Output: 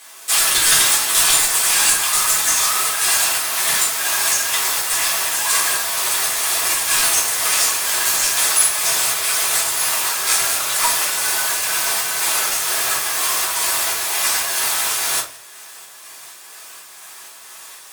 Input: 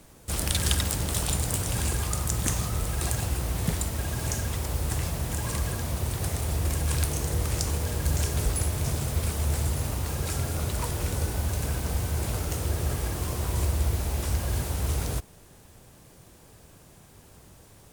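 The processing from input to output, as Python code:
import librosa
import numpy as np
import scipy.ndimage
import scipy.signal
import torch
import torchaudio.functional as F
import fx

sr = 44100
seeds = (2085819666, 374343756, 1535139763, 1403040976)

p1 = scipy.signal.sosfilt(scipy.signal.butter(2, 1500.0, 'highpass', fs=sr, output='sos'), x)
p2 = fx.fold_sine(p1, sr, drive_db=20, ceiling_db=-4.5)
p3 = p1 + F.gain(torch.from_numpy(p2), -9.0).numpy()
p4 = fx.volume_shaper(p3, sr, bpm=125, per_beat=1, depth_db=-3, release_ms=205.0, shape='slow start')
p5 = fx.room_shoebox(p4, sr, seeds[0], volume_m3=170.0, walls='furnished', distance_m=3.7)
y = F.gain(torch.from_numpy(p5), -3.0).numpy()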